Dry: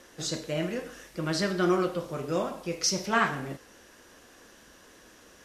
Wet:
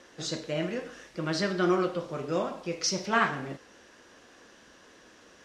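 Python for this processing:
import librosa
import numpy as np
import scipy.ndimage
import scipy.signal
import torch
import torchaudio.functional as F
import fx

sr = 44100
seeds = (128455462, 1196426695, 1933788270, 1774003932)

y = scipy.signal.sosfilt(scipy.signal.butter(2, 6100.0, 'lowpass', fs=sr, output='sos'), x)
y = fx.low_shelf(y, sr, hz=68.0, db=-10.5)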